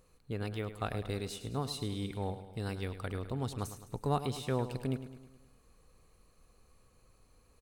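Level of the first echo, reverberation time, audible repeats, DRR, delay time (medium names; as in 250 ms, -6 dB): -12.0 dB, no reverb, 5, no reverb, 105 ms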